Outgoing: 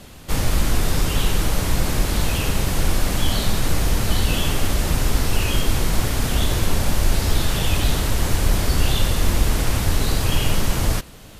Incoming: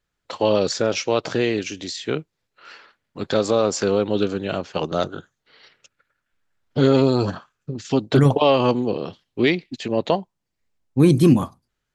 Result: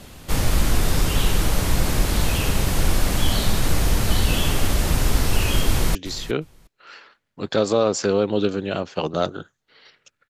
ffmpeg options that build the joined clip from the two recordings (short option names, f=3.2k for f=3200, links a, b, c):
-filter_complex "[0:a]apad=whole_dur=10.29,atrim=end=10.29,atrim=end=5.952[a];[1:a]atrim=start=1.728:end=6.07[b];[a][b]acrossfade=d=0.004:c1=hsin:c2=hsin,asplit=2[c][d];[d]afade=t=in:st=5.69:d=0.01,afade=t=out:st=5.95:d=0.01,aecho=0:1:360|720:0.16788|0.0251821[e];[c][e]amix=inputs=2:normalize=0"